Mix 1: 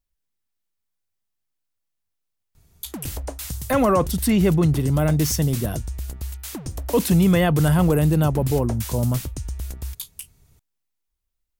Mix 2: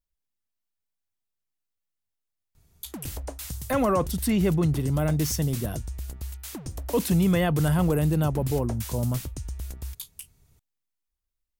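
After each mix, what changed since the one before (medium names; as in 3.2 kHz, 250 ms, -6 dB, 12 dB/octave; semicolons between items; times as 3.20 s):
speech -5.0 dB; background -4.5 dB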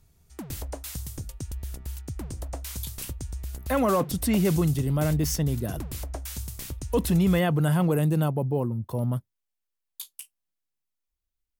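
background: entry -2.55 s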